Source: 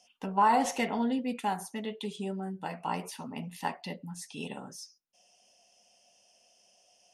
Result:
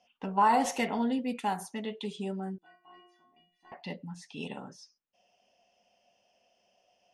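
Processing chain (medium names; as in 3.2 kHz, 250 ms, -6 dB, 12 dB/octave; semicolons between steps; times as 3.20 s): 2.58–3.72 s: inharmonic resonator 350 Hz, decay 0.62 s, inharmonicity 0.008; level-controlled noise filter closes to 2.6 kHz, open at -28.5 dBFS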